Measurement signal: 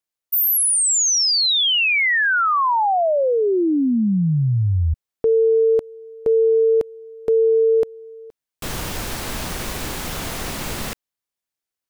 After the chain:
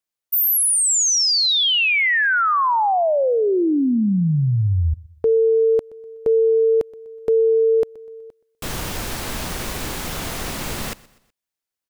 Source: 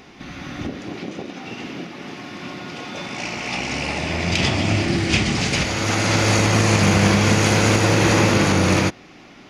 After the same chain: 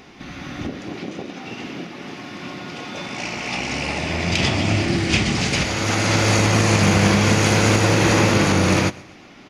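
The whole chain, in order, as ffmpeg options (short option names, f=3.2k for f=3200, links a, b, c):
-af "aecho=1:1:124|248|372:0.0794|0.0342|0.0147"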